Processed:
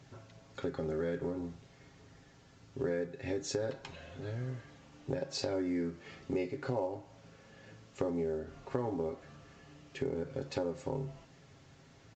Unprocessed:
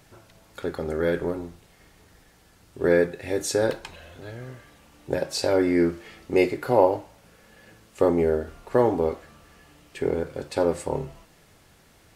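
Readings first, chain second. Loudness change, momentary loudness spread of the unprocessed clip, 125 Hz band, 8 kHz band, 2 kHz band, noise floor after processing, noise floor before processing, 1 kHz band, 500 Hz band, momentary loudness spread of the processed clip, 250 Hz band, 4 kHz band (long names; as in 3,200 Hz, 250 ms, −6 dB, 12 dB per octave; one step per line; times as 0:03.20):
−13.0 dB, 19 LU, −6.5 dB, −12.0 dB, −14.0 dB, −60 dBFS, −57 dBFS, −15.5 dB, −13.0 dB, 20 LU, −11.0 dB, −9.5 dB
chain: high-pass filter 69 Hz 12 dB per octave
low-shelf EQ 310 Hz +7.5 dB
comb filter 7.4 ms, depth 50%
downward compressor 5 to 1, threshold −26 dBFS, peak gain reduction 15.5 dB
level −6.5 dB
mu-law 128 kbit/s 16,000 Hz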